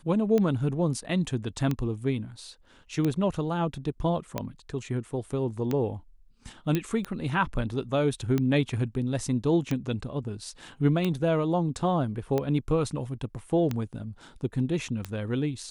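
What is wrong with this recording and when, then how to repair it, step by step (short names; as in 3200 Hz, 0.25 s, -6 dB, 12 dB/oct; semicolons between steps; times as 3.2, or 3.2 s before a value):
tick 45 rpm -15 dBFS
6.75 pop -13 dBFS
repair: de-click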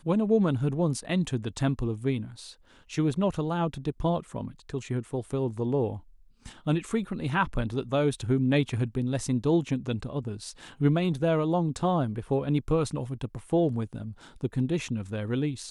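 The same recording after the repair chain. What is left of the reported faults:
none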